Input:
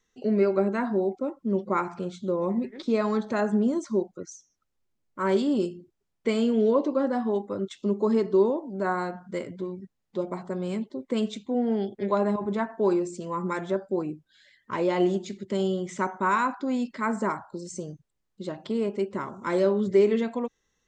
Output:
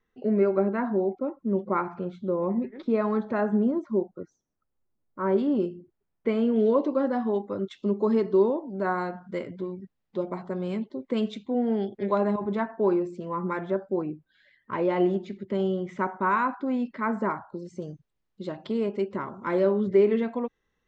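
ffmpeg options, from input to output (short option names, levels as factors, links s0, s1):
-af "asetnsamples=n=441:p=0,asendcmd='3.71 lowpass f 1300;5.38 lowpass f 2000;6.56 lowpass f 3900;12.71 lowpass f 2400;17.82 lowpass f 4500;19.16 lowpass f 2700',lowpass=2000"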